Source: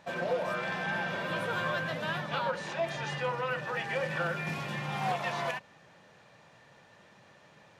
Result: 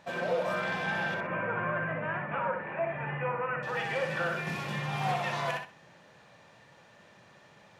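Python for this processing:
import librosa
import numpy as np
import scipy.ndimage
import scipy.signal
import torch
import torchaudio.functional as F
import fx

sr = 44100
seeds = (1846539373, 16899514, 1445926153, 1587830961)

y = fx.ellip_lowpass(x, sr, hz=2400.0, order=4, stop_db=50, at=(1.14, 3.63))
y = fx.echo_feedback(y, sr, ms=62, feedback_pct=23, wet_db=-5.5)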